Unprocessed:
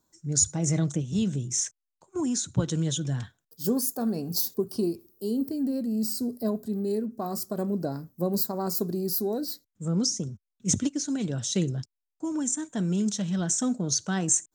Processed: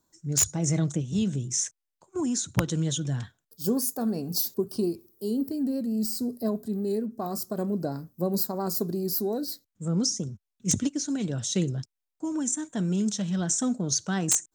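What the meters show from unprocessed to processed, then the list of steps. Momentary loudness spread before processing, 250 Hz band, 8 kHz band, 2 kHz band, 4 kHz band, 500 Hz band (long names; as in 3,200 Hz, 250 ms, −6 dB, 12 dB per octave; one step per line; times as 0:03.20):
7 LU, 0.0 dB, 0.0 dB, +1.5 dB, 0.0 dB, 0.0 dB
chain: wrap-around overflow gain 12 dB
pitch vibrato 5.6 Hz 29 cents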